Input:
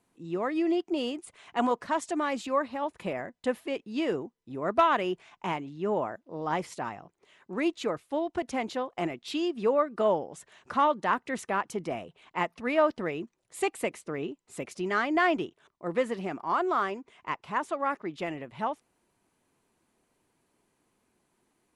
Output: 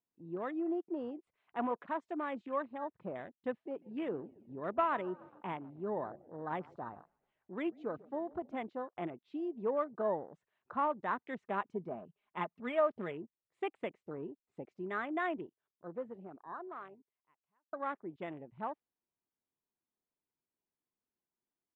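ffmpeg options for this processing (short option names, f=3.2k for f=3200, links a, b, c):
-filter_complex "[0:a]asplit=3[a][b][c];[a]afade=t=out:st=3.79:d=0.02[d];[b]asplit=6[e][f][g][h][i][j];[f]adelay=141,afreqshift=-32,volume=-20dB[k];[g]adelay=282,afreqshift=-64,volume=-24.3dB[l];[h]adelay=423,afreqshift=-96,volume=-28.6dB[m];[i]adelay=564,afreqshift=-128,volume=-32.9dB[n];[j]adelay=705,afreqshift=-160,volume=-37.2dB[o];[e][k][l][m][n][o]amix=inputs=6:normalize=0,afade=t=in:st=3.79:d=0.02,afade=t=out:st=8.55:d=0.02[p];[c]afade=t=in:st=8.55:d=0.02[q];[d][p][q]amix=inputs=3:normalize=0,asettb=1/sr,asplit=3[r][s][t];[r]atrim=end=11.424[u];[s]atrim=start=11.42:end=13.12,asetpts=PTS-STARTPTS,afade=t=in:d=0.004:c=qsin,afade=t=out:st=1.696:d=0.004:c=qsin,aecho=1:1:4.9:0.46,atrim=end_sample=74970[v];[t]atrim=start=13.116[w];[u][v]acrossfade=d=0.004:c1=hsin:c2=qsin[x];[x][w]acrossfade=d=0.004:c1=qsin:c2=hsin,asplit=2[y][z];[y]atrim=end=17.73,asetpts=PTS-STARTPTS,afade=t=out:st=14.61:d=3.12[aa];[z]atrim=start=17.73,asetpts=PTS-STARTPTS,afade=t=in:d=0.004:c=hsin[ab];[aa][ab]concat=n=2:v=0:a=1,lowpass=2.6k,afwtdn=0.01,volume=-8.5dB"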